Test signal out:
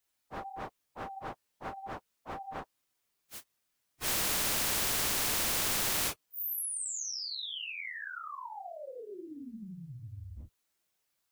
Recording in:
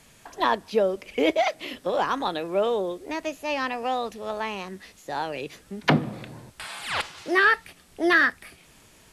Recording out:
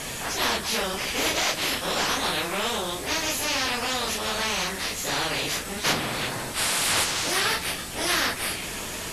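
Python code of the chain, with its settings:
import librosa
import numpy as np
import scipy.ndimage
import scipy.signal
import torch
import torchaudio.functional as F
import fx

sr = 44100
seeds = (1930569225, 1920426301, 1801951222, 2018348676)

y = fx.phase_scramble(x, sr, seeds[0], window_ms=100)
y = fx.spectral_comp(y, sr, ratio=4.0)
y = F.gain(torch.from_numpy(y), -2.5).numpy()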